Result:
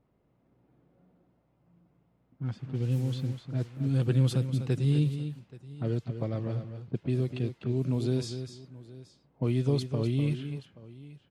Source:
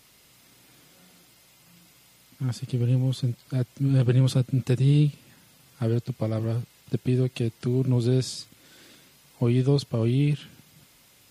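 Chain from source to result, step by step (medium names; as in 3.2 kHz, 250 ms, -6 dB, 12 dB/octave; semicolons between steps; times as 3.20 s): 2.59–3.85 s: word length cut 8-bit, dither triangular; level-controlled noise filter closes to 630 Hz, open at -17.5 dBFS; multi-tap echo 249/828 ms -9.5/-19.5 dB; trim -5.5 dB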